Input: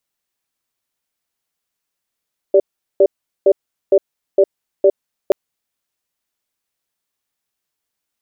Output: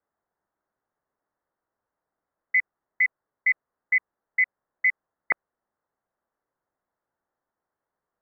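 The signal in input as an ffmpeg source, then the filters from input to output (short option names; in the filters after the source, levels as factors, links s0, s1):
-f lavfi -i "aevalsrc='0.335*(sin(2*PI*394*t)+sin(2*PI*581*t))*clip(min(mod(t,0.46),0.06-mod(t,0.46))/0.005,0,1)':d=2.78:s=44100"
-af "highpass=890,crystalizer=i=6.5:c=0,lowpass=f=2200:t=q:w=0.5098,lowpass=f=2200:t=q:w=0.6013,lowpass=f=2200:t=q:w=0.9,lowpass=f=2200:t=q:w=2.563,afreqshift=-2600"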